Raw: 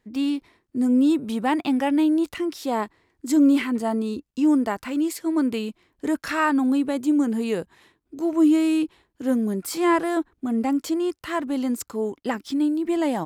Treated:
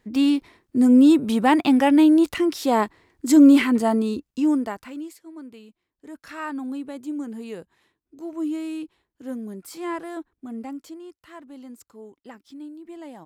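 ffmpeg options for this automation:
-af "volume=4.47,afade=t=out:st=3.73:d=1.09:silence=0.251189,afade=t=out:st=4.82:d=0.39:silence=0.281838,afade=t=in:st=6.05:d=0.43:silence=0.398107,afade=t=out:st=10.56:d=0.46:silence=0.473151"

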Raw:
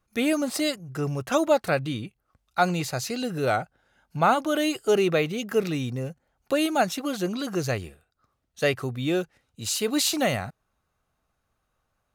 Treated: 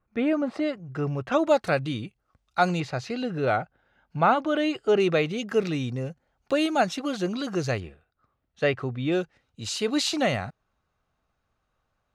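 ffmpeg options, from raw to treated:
-af "asetnsamples=n=441:p=0,asendcmd='0.76 lowpass f 3100;1.47 lowpass f 7300;2.8 lowpass f 3200;5 lowpass f 6100;7.8 lowpass f 3000;9.12 lowpass f 5500',lowpass=1800"

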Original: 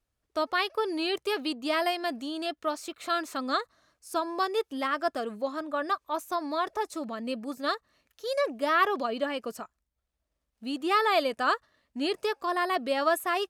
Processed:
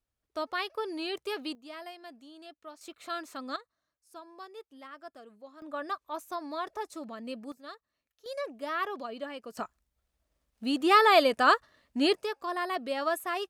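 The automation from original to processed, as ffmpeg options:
-af "asetnsamples=n=441:p=0,asendcmd='1.55 volume volume -16.5dB;2.81 volume volume -7.5dB;3.56 volume volume -18dB;5.62 volume volume -6dB;7.52 volume volume -16dB;8.26 volume volume -8.5dB;9.57 volume volume 4dB;12.14 volume volume -4.5dB',volume=0.531"

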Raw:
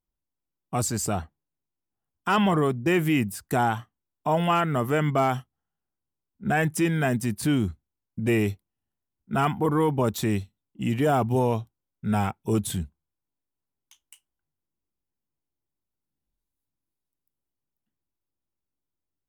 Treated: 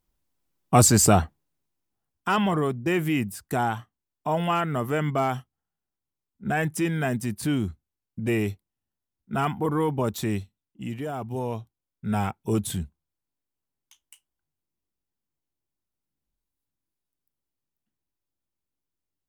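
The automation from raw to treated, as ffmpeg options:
-af "volume=10.6,afade=t=out:st=1.06:d=1.34:silence=0.251189,afade=t=out:st=10.4:d=0.72:silence=0.354813,afade=t=in:st=11.12:d=1.22:silence=0.298538"

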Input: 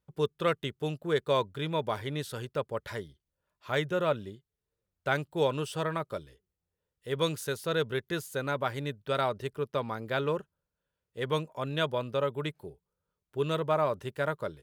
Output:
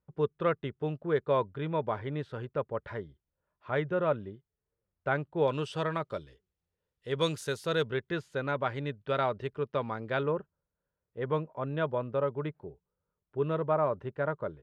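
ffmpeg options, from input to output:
-af "asetnsamples=n=441:p=0,asendcmd='5.48 lowpass f 4900;7.21 lowpass f 8100;7.87 lowpass f 3000;10.23 lowpass f 1500',lowpass=1800"

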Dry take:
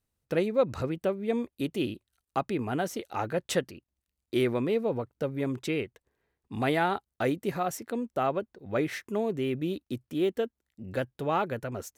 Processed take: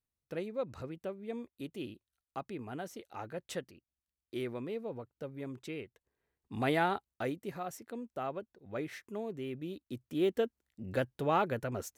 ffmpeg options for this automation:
-af "volume=1.88,afade=t=in:st=5.82:d=0.98:silence=0.375837,afade=t=out:st=6.8:d=0.59:silence=0.446684,afade=t=in:st=9.82:d=0.54:silence=0.375837"

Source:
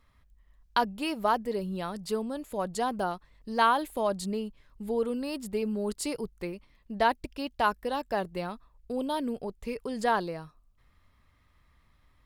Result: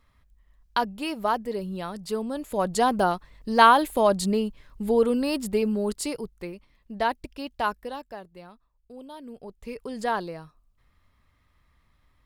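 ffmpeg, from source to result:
-af "volume=8.91,afade=t=in:st=2.1:d=0.75:silence=0.446684,afade=t=out:st=5.33:d=0.98:silence=0.375837,afade=t=out:st=7.68:d=0.52:silence=0.281838,afade=t=in:st=9.22:d=0.61:silence=0.281838"

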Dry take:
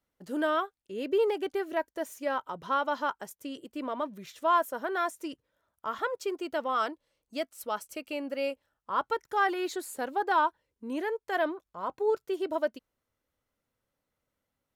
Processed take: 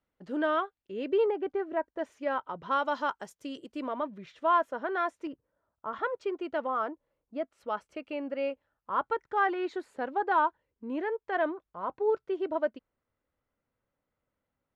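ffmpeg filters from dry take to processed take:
-af "asetnsamples=n=441:p=0,asendcmd='1.26 lowpass f 1500;1.99 lowpass f 2800;2.71 lowpass f 6200;3.88 lowpass f 2800;5.27 lowpass f 1200;5.93 lowpass f 2500;6.67 lowpass f 1300;7.51 lowpass f 2300',lowpass=3200"

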